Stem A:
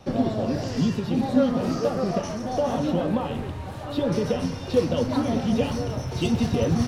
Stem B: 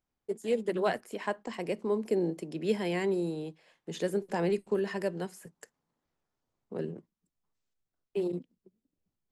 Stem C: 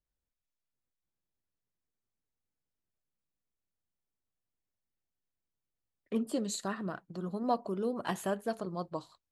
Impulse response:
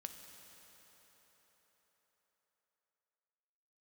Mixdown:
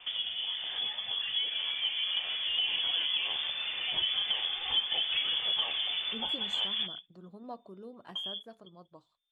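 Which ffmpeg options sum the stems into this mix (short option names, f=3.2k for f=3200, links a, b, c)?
-filter_complex "[0:a]lowshelf=f=490:g=-8,volume=2dB[a];[1:a]acompressor=threshold=-35dB:ratio=6,volume=0dB[b];[2:a]highshelf=f=5.7k:g=-7,volume=-16dB,asplit=2[c][d];[d]apad=whole_len=303276[e];[a][e]sidechaincompress=threshold=-56dB:ratio=4:attack=44:release=401[f];[f][b]amix=inputs=2:normalize=0,lowpass=f=3.1k:t=q:w=0.5098,lowpass=f=3.1k:t=q:w=0.6013,lowpass=f=3.1k:t=q:w=0.9,lowpass=f=3.1k:t=q:w=2.563,afreqshift=-3600,acompressor=threshold=-36dB:ratio=2.5,volume=0dB[g];[c][g]amix=inputs=2:normalize=0,dynaudnorm=f=410:g=9:m=4dB"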